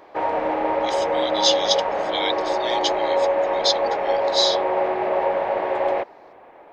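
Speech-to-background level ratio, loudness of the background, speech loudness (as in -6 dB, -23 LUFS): -2.5 dB, -22.0 LUFS, -24.5 LUFS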